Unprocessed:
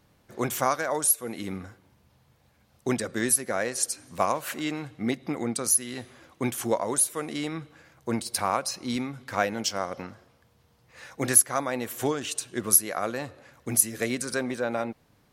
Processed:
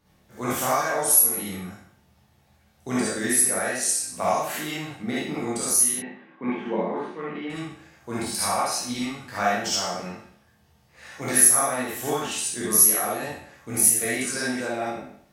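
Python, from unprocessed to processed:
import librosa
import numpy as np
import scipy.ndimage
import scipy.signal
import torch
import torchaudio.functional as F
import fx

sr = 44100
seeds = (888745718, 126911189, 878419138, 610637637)

y = fx.spec_trails(x, sr, decay_s=0.66)
y = fx.cabinet(y, sr, low_hz=180.0, low_slope=24, high_hz=2500.0, hz=(180.0, 660.0, 1300.0), db=(10, -7, -5), at=(5.94, 7.5))
y = fx.rev_gated(y, sr, seeds[0], gate_ms=90, shape='rising', drr_db=-6.5)
y = y * librosa.db_to_amplitude(-7.0)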